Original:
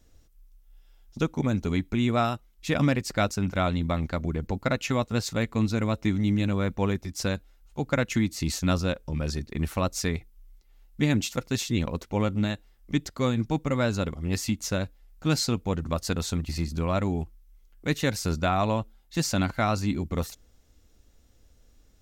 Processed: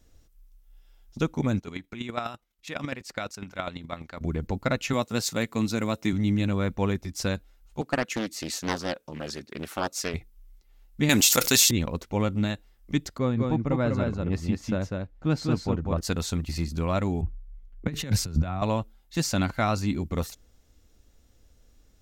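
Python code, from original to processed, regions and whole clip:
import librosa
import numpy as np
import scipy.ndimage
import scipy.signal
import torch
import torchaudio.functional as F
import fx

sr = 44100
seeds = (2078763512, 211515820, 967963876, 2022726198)

y = fx.chain(x, sr, fx.lowpass(hz=2200.0, slope=6),
    fx.tilt_eq(slope=3.0),
    fx.chopper(hz=12.0, depth_pct=60, duty_pct=15), at=(1.59, 4.21))
y = fx.chain(y, sr, fx.highpass(hz=140.0, slope=12),
    fx.high_shelf(hz=5600.0, db=8.5), at=(4.93, 6.13))
y = fx.chain(y, sr, fx.bessel_highpass(hz=290.0, order=2),
    fx.doppler_dist(depth_ms=0.69), at=(7.81, 10.14))
y = fx.chain(y, sr, fx.riaa(side='recording'),
    fx.leveller(passes=1),
    fx.env_flatten(amount_pct=70), at=(11.09, 11.71))
y = fx.chain(y, sr, fx.lowpass(hz=1200.0, slope=6),
    fx.echo_single(ms=198, db=-3.5), at=(13.18, 16.01))
y = fx.chain(y, sr, fx.bass_treble(bass_db=9, treble_db=-4),
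    fx.over_compress(threshold_db=-25.0, ratio=-0.5),
    fx.band_widen(depth_pct=40), at=(17.21, 18.62))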